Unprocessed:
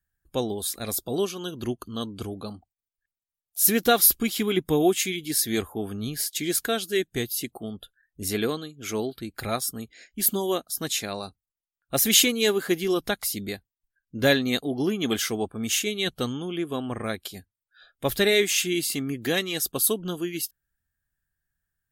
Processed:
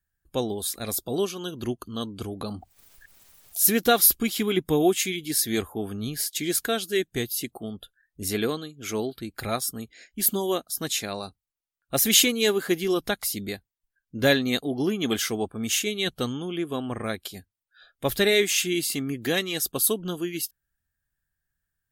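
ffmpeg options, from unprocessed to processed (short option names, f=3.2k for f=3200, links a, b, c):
-filter_complex "[0:a]asettb=1/sr,asplit=3[a][b][c];[a]atrim=end=2.414[d];[b]atrim=start=2.41:end=3.76,asetpts=PTS-STARTPTS,afade=t=in:d=0.004:c=qsin,afade=t=out:st=1.346:d=0.004:c=qsin,acompressor=mode=upward:threshold=-25dB:ratio=2.5:attack=3.2:release=140:knee=2.83:detection=peak[e];[c]atrim=start=3.756[f];[d][e]acrossfade=d=0.004:c1=hsin:c2=qsin[g];[g][f]acrossfade=d=0.004:c1=qsin:c2=hsin"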